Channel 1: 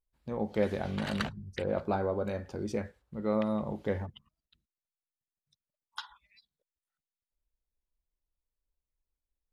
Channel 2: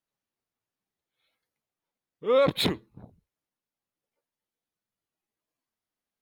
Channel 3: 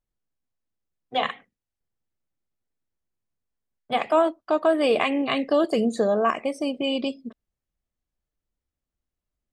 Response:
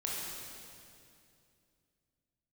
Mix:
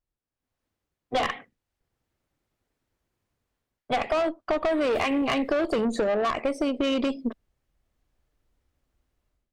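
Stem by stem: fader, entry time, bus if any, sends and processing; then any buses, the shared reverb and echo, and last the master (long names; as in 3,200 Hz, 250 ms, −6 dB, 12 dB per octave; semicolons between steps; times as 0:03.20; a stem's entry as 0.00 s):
muted
−13.5 dB, 2.35 s, send −9.5 dB, gate on every frequency bin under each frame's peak −10 dB weak
−1.0 dB, 0.00 s, no send, high-shelf EQ 4,400 Hz −9 dB; automatic gain control gain up to 16 dB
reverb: on, RT60 2.5 s, pre-delay 19 ms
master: parametric band 190 Hz −6 dB 0.34 octaves; tube saturation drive 15 dB, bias 0.4; downward compressor, threshold −22 dBFS, peak gain reduction 6 dB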